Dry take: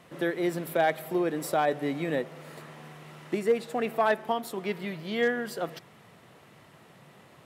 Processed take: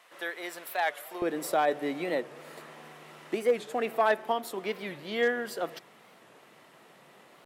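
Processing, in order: high-pass 850 Hz 12 dB/octave, from 1.22 s 270 Hz; warped record 45 rpm, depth 160 cents

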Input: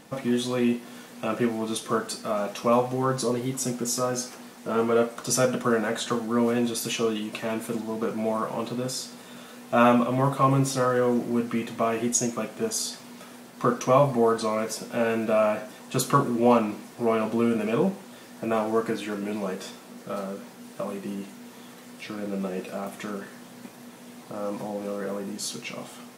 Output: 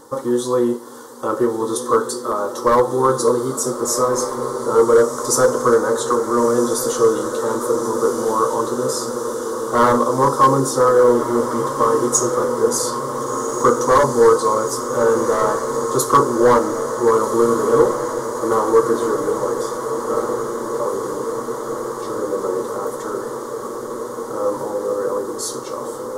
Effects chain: graphic EQ 125/500/1000/2000/8000 Hz +3/+7/+8/-6/+4 dB; hard clipper -11 dBFS, distortion -14 dB; static phaser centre 680 Hz, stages 6; on a send: echo that smears into a reverb 1453 ms, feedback 77%, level -9 dB; on the sum: trim +5.5 dB

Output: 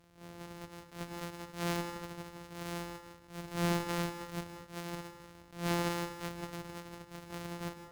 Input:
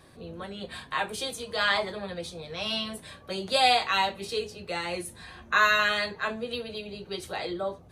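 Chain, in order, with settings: sorted samples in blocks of 256 samples; valve stage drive 17 dB, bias 0.65; on a send at -9.5 dB: reverberation RT60 0.45 s, pre-delay 146 ms; on the sum: attacks held to a fixed rise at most 160 dB/s; trim -6 dB

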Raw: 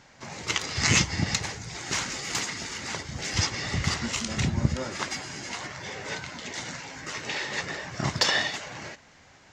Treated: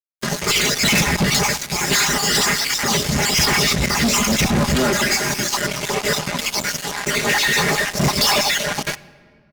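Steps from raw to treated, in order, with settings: random holes in the spectrogram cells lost 38%; speakerphone echo 100 ms, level -12 dB; LFO notch sine 2.9 Hz 800–4200 Hz; 6.36–6.85 s: bass shelf 430 Hz -5.5 dB; comb 4.9 ms, depth 96%; 0.89–1.32 s: treble shelf 2.9 kHz -8.5 dB; 3.45–3.95 s: compressor with a negative ratio -33 dBFS, ratio -1; fuzz box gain 39 dB, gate -40 dBFS; reverberation RT60 2.0 s, pre-delay 7 ms, DRR 16.5 dB; trim -1 dB

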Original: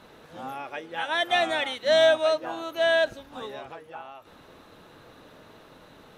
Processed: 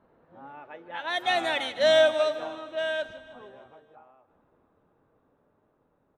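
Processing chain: Doppler pass-by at 1.74 s, 15 m/s, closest 7.9 m; level-controlled noise filter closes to 1.1 kHz, open at -25 dBFS; feedback delay 155 ms, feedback 60%, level -16 dB

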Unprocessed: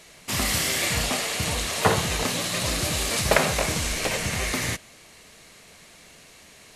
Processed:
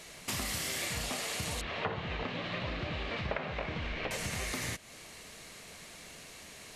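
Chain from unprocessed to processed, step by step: 1.61–4.11 s: low-pass 3.2 kHz 24 dB/octave; compression 4:1, threshold -35 dBFS, peak gain reduction 18 dB

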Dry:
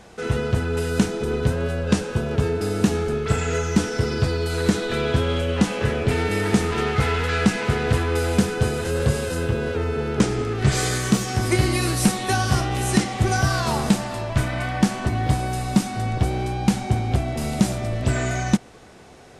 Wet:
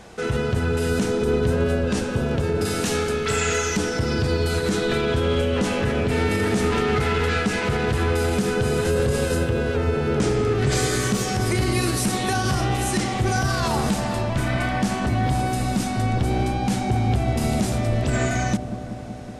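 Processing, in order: 2.65–3.77 s: tilt shelf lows -6.5 dB, about 930 Hz; peak limiter -16 dBFS, peak gain reduction 10 dB; feedback echo behind a low-pass 188 ms, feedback 78%, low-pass 690 Hz, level -10 dB; trim +2.5 dB

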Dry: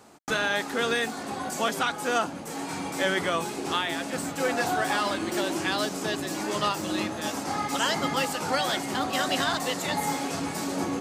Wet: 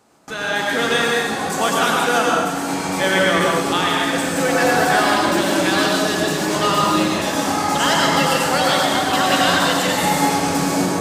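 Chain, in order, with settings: level rider gain up to 11.5 dB; reverberation RT60 1.4 s, pre-delay 83 ms, DRR -3 dB; trim -4.5 dB

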